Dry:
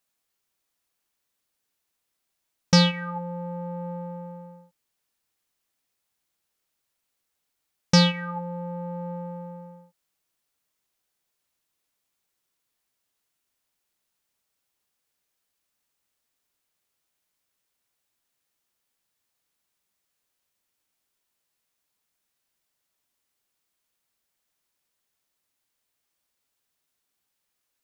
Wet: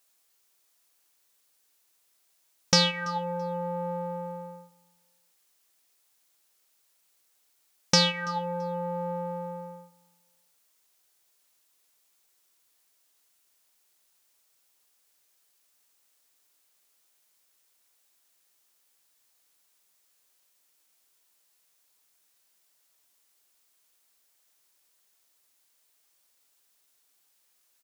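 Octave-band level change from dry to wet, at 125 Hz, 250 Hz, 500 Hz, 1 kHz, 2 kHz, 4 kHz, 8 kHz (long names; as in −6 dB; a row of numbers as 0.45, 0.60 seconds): −8.0, −8.0, +0.5, +1.5, −0.5, +0.5, +3.5 decibels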